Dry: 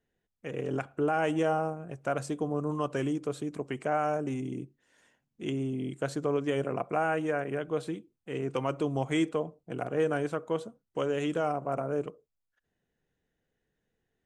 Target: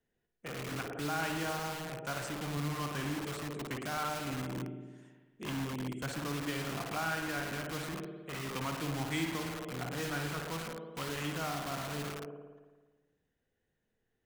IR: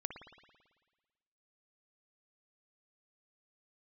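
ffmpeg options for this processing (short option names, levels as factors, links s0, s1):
-filter_complex "[0:a]asettb=1/sr,asplit=3[s0][s1][s2];[s0]atrim=end=0.684[s3];[s1]atrim=start=0.68:end=2.57,asetpts=PTS-STARTPTS,afade=t=in:d=0.004:c=qsin,afade=t=out:st=1.886:d=0.004:c=qsin,highpass=110[s4];[s2]atrim=start=2.566[s5];[s3][s4]acrossfade=d=0.004:c1=hsin:c2=qsin[s6];[s6][s5]acrossfade=d=0.004:c1=qsin:c2=hsin[s7];[1:a]atrim=start_sample=2205[s8];[s7][s8]afir=irnorm=-1:irlink=0,acrossover=split=290|800|2300[s9][s10][s11][s12];[s10]aeval=exprs='(mod(89.1*val(0)+1,2)-1)/89.1':c=same[s13];[s9][s13][s11][s12]amix=inputs=4:normalize=0"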